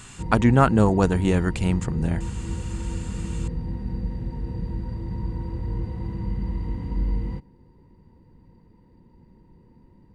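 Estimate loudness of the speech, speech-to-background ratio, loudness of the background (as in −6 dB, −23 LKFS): −21.5 LKFS, 9.5 dB, −31.0 LKFS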